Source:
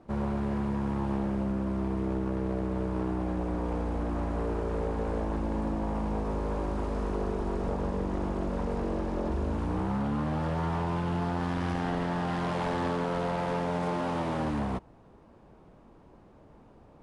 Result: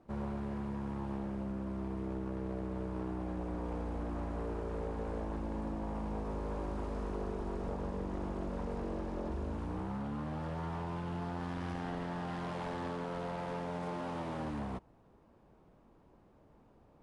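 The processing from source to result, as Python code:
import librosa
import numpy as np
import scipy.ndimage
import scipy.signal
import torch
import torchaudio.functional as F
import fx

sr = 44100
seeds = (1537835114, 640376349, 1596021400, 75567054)

y = fx.rider(x, sr, range_db=10, speed_s=0.5)
y = F.gain(torch.from_numpy(y), -8.0).numpy()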